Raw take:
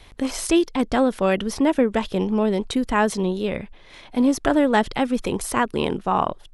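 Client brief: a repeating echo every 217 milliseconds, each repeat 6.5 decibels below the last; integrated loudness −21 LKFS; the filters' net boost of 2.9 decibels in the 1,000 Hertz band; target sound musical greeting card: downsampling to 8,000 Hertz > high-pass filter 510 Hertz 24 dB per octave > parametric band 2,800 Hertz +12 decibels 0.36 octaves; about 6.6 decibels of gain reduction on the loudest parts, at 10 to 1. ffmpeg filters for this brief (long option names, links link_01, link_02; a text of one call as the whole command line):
ffmpeg -i in.wav -af "equalizer=frequency=1000:width_type=o:gain=3.5,acompressor=threshold=-19dB:ratio=10,aecho=1:1:217|434|651|868|1085|1302:0.473|0.222|0.105|0.0491|0.0231|0.0109,aresample=8000,aresample=44100,highpass=frequency=510:width=0.5412,highpass=frequency=510:width=1.3066,equalizer=frequency=2800:width_type=o:width=0.36:gain=12,volume=6.5dB" out.wav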